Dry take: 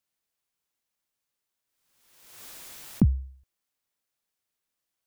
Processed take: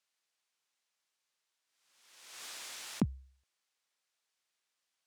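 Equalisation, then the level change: HPF 910 Hz 6 dB/oct; air absorption 70 m; high shelf 4600 Hz +5 dB; +4.0 dB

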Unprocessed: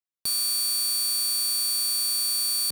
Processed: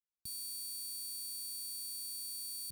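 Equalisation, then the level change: passive tone stack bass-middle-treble 10-0-1; bell 600 Hz -7 dB 1.1 oct; bell 3100 Hz -5 dB 2.5 oct; +5.5 dB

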